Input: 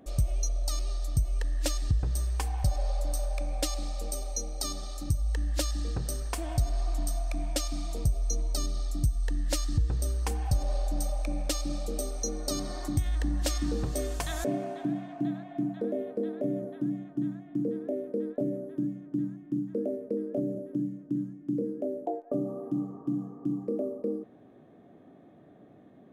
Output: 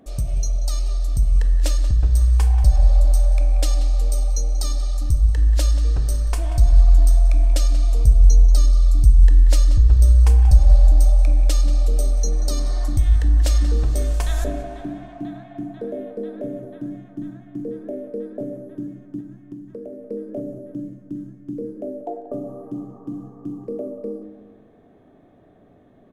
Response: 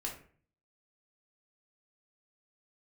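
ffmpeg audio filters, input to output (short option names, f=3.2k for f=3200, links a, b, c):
-filter_complex "[0:a]asubboost=boost=6.5:cutoff=64,asettb=1/sr,asplit=3[a][b][c];[a]atrim=end=19.204[d];[b]atrim=start=19.2:end=20.1,asetpts=PTS-STARTPTS,afade=t=in:d=0.004:c=qsin,afade=t=out:st=0.896:d=0.004:c=qsin,acompressor=threshold=-35dB:ratio=6[e];[c]atrim=start=20.096[f];[d][e]acrossfade=d=0.004:c1=hsin:c2=qsin[g];[g][f]acrossfade=d=0.004:c1=qsin:c2=hsin,asplit=2[h][i];[i]adelay=184,lowpass=f=4.4k:p=1,volume=-13dB,asplit=2[j][k];[k]adelay=184,lowpass=f=4.4k:p=1,volume=0.46,asplit=2[l][m];[m]adelay=184,lowpass=f=4.4k:p=1,volume=0.46,asplit=2[n][o];[o]adelay=184,lowpass=f=4.4k:p=1,volume=0.46,asplit=2[p][q];[q]adelay=184,lowpass=f=4.4k:p=1,volume=0.46[r];[h][j][l][n][p][r]amix=inputs=6:normalize=0,asplit=2[s][t];[1:a]atrim=start_sample=2205,asetrate=25578,aresample=44100[u];[t][u]afir=irnorm=-1:irlink=0,volume=-8.5dB[v];[s][v]amix=inputs=2:normalize=0"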